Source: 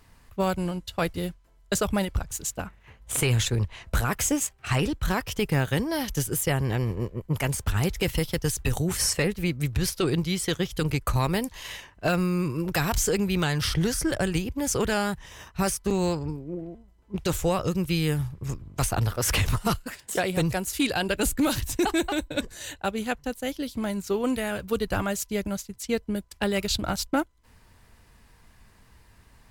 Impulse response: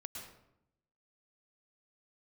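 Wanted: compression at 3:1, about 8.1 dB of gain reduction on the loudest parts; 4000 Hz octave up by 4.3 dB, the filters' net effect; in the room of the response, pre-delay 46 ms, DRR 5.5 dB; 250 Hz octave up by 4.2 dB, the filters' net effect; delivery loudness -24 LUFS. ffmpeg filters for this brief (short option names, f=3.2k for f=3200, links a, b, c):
-filter_complex "[0:a]equalizer=f=250:t=o:g=6,equalizer=f=4k:t=o:g=5.5,acompressor=threshold=-27dB:ratio=3,asplit=2[a][b];[1:a]atrim=start_sample=2205,adelay=46[c];[b][c]afir=irnorm=-1:irlink=0,volume=-2.5dB[d];[a][d]amix=inputs=2:normalize=0,volume=5dB"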